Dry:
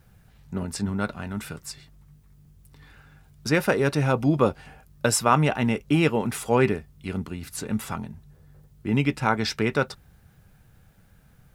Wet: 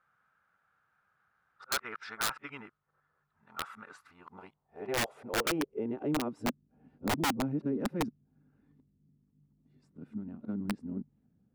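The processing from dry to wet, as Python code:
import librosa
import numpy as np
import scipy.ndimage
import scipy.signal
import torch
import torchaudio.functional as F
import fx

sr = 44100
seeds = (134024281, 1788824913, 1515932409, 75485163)

y = np.flip(x).copy()
y = fx.filter_sweep_bandpass(y, sr, from_hz=1300.0, to_hz=250.0, start_s=3.87, end_s=6.53, q=4.3)
y = (np.mod(10.0 ** (24.0 / 20.0) * y + 1.0, 2.0) - 1.0) / 10.0 ** (24.0 / 20.0)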